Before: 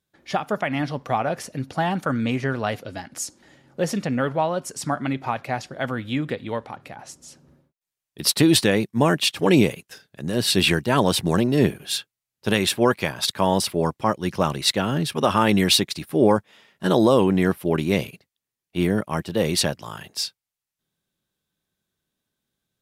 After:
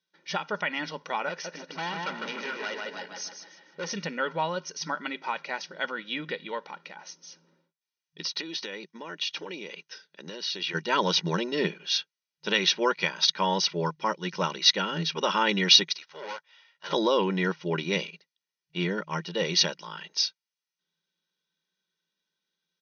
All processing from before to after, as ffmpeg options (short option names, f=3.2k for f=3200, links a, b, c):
-filter_complex "[0:a]asettb=1/sr,asplit=3[a][b][c];[a]atrim=end=1.294[d];[b]atrim=start=1.29:end=3.88,asetpts=PTS-STARTPTS,afade=t=in:d=0.004:c=qsin,afade=t=out:st=2.586:d=0.004:c=qsin,asplit=2[e][f];[f]adelay=153,lowpass=f=3.6k:p=1,volume=-4dB,asplit=2[g][h];[h]adelay=153,lowpass=f=3.6k:p=1,volume=0.46,asplit=2[i][j];[j]adelay=153,lowpass=f=3.6k:p=1,volume=0.46,asplit=2[k][l];[l]adelay=153,lowpass=f=3.6k:p=1,volume=0.46,asplit=2[m][n];[n]adelay=153,lowpass=f=3.6k:p=1,volume=0.46,asplit=2[o][p];[p]adelay=153,lowpass=f=3.6k:p=1,volume=0.46[q];[e][g][i][k][m][o][q]amix=inputs=7:normalize=0,atrim=end_sample=114219,asoftclip=type=hard:threshold=-24dB,highpass=210,lowpass=7.1k[r];[c]atrim=start=3.876[s];[d][r]acrossfade=d=0.004:c1=hsin:c2=qsin[t];[t][s]acrossfade=d=0.004:c1=qsin:c2=hsin,asettb=1/sr,asplit=3[u][v][w];[u]atrim=end=8.234[x];[v]atrim=start=8.23:end=10.75,asetpts=PTS-STARTPTS,afade=t=in:d=0.004:c=qsin,afade=t=out:st=2.516:d=0.004:c=qsin,highpass=f=210:w=0.5412,highpass=f=210:w=1.3066,acompressor=threshold=-27dB:ratio=16:attack=3.2:release=140:knee=1:detection=peak[y];[w]atrim=start=10.746[z];[x][y]acrossfade=d=0.004:c1=hsin:c2=qsin[aa];[aa][z]acrossfade=d=0.004:c1=qsin:c2=hsin,asettb=1/sr,asplit=3[ab][ac][ad];[ab]atrim=end=15.954[ae];[ac]atrim=start=15.95:end=16.93,asetpts=PTS-STARTPTS,afade=t=in:d=0.004:c=qsin,afade=t=out:st=0.976:d=0.004:c=qsin,highpass=f=570:w=0.5412,highpass=f=570:w=1.3066,aeval=exprs='(tanh(28.2*val(0)+0.75)-tanh(0.75))/28.2':c=same[af];[ad]atrim=start=16.926[ag];[ae][af]acrossfade=d=0.004:c1=hsin:c2=qsin[ah];[ah][ag]acrossfade=d=0.004:c1=qsin:c2=hsin,afftfilt=real='re*between(b*sr/4096,160,6400)':imag='im*between(b*sr/4096,160,6400)':win_size=4096:overlap=0.75,equalizer=f=460:t=o:w=2.3:g=-10.5,aecho=1:1:2.1:0.66"